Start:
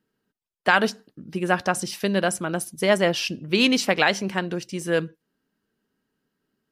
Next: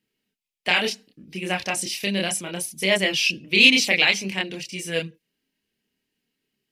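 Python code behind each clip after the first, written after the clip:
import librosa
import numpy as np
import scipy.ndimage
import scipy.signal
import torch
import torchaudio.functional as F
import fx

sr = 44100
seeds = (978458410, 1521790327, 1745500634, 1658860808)

y = fx.high_shelf_res(x, sr, hz=1800.0, db=7.5, q=3.0)
y = fx.chorus_voices(y, sr, voices=2, hz=0.68, base_ms=28, depth_ms=2.3, mix_pct=45)
y = y * 10.0 ** (-1.5 / 20.0)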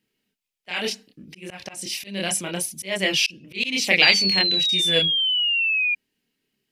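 y = fx.spec_paint(x, sr, seeds[0], shape='fall', start_s=4.02, length_s=1.93, low_hz=2400.0, high_hz=4800.0, level_db=-24.0)
y = fx.auto_swell(y, sr, attack_ms=308.0)
y = y * 10.0 ** (2.5 / 20.0)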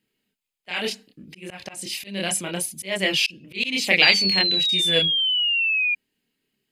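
y = fx.notch(x, sr, hz=5700.0, q=6.9)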